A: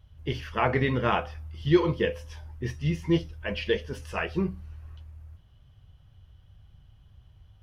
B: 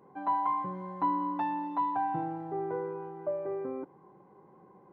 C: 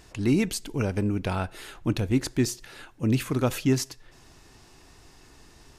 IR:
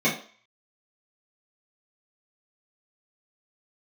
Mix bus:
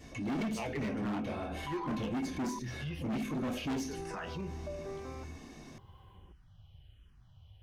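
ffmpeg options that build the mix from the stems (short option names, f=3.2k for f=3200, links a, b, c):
-filter_complex "[0:a]equalizer=f=2.8k:t=o:w=0.61:g=5,asplit=2[a][b];[b]afreqshift=-1.3[c];[a][c]amix=inputs=2:normalize=1,volume=-0.5dB[d];[1:a]bass=f=250:g=14,treble=f=4k:g=3,acrossover=split=570[e][f];[e]aeval=exprs='val(0)*(1-0.7/2+0.7/2*cos(2*PI*1.2*n/s))':c=same[g];[f]aeval=exprs='val(0)*(1-0.7/2-0.7/2*cos(2*PI*1.2*n/s))':c=same[h];[g][h]amix=inputs=2:normalize=0,tiltshelf=f=880:g=-8,adelay=1400,volume=-2dB,asplit=3[i][j][k];[i]atrim=end=2.59,asetpts=PTS-STARTPTS,afade=t=out:st=2.586:d=0.004:c=hsin[l];[j]atrim=start=2.59:end=3.82,asetpts=PTS-STARTPTS,volume=0[m];[k]atrim=start=3.82,asetpts=PTS-STARTPTS,afade=t=in:d=0.004:c=hsin[n];[l][m][n]concat=n=3:v=0:a=1[o];[2:a]volume=-6dB,asplit=2[p][q];[q]volume=-7dB[r];[3:a]atrim=start_sample=2205[s];[r][s]afir=irnorm=-1:irlink=0[t];[d][o][p][t]amix=inputs=4:normalize=0,volume=21dB,asoftclip=hard,volume=-21dB,alimiter=level_in=8dB:limit=-24dB:level=0:latency=1:release=39,volume=-8dB"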